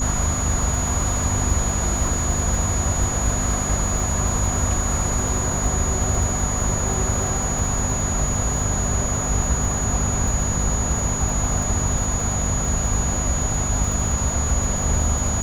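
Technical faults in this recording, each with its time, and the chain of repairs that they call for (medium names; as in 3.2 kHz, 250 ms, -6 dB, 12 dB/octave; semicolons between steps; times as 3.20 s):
crackle 44 per s -26 dBFS
hum 50 Hz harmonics 5 -27 dBFS
whine 6.8 kHz -25 dBFS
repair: de-click; de-hum 50 Hz, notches 5; band-stop 6.8 kHz, Q 30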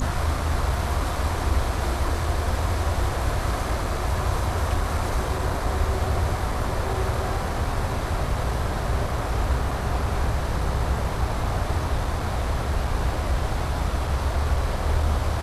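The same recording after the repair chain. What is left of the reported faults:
nothing left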